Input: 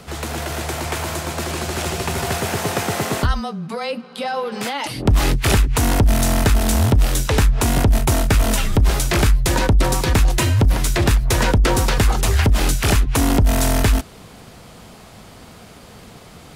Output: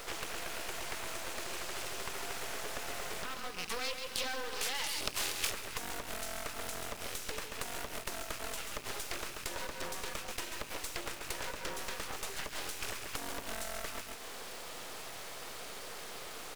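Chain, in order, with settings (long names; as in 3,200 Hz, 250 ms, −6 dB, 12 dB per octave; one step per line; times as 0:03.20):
loose part that buzzes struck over −27 dBFS, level −24 dBFS
high-pass filter 400 Hz 24 dB per octave
half-wave rectification
parametric band 730 Hz −4.5 dB 0.69 octaves
repeating echo 136 ms, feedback 16%, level −9 dB
downward compressor 8 to 1, threshold −38 dBFS, peak gain reduction 19.5 dB
0:03.58–0:05.50: high-shelf EQ 2,300 Hz +10.5 dB
bit-depth reduction 8 bits, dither none
highs frequency-modulated by the lows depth 0.8 ms
level +2.5 dB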